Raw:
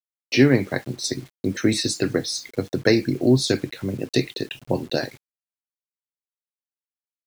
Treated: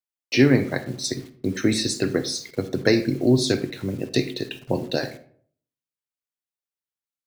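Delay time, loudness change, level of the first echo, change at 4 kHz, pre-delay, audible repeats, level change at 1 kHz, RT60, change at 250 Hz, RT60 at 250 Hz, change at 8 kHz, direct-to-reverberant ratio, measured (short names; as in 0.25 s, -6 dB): none, -0.5 dB, none, -1.0 dB, 40 ms, none, -0.5 dB, 0.55 s, -0.5 dB, 0.65 s, -1.0 dB, 12.0 dB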